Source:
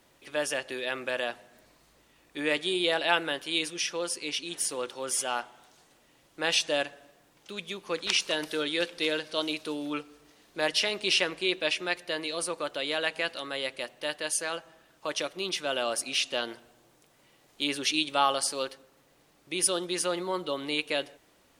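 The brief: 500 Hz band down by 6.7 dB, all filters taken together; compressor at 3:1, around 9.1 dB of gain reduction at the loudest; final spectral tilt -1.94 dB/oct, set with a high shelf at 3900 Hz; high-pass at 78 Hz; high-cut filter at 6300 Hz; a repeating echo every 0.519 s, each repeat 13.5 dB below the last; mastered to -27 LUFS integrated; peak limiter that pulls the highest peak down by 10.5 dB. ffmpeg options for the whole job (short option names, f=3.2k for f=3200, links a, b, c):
-af "highpass=78,lowpass=6.3k,equalizer=f=500:t=o:g=-8.5,highshelf=f=3.9k:g=-3,acompressor=threshold=-35dB:ratio=3,alimiter=level_in=5dB:limit=-24dB:level=0:latency=1,volume=-5dB,aecho=1:1:519|1038:0.211|0.0444,volume=14dB"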